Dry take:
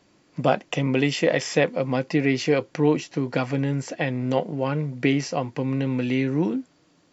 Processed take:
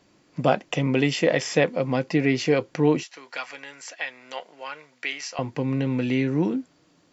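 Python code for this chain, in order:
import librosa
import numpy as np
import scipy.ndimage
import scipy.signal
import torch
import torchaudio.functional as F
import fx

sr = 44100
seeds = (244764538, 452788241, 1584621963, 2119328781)

y = fx.highpass(x, sr, hz=1200.0, slope=12, at=(3.03, 5.39))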